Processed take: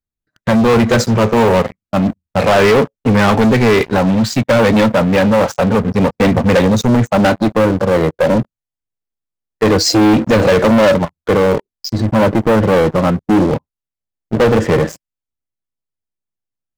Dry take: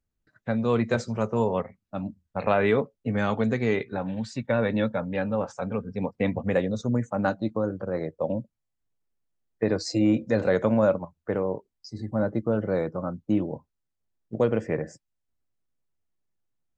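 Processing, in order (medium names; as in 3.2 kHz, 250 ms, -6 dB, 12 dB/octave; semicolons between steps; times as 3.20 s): waveshaping leveller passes 5; trim +3 dB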